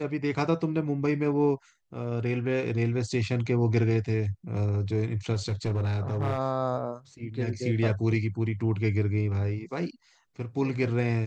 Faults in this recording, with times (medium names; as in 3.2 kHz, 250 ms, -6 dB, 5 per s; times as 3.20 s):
5.34–6.38 s: clipped -22.5 dBFS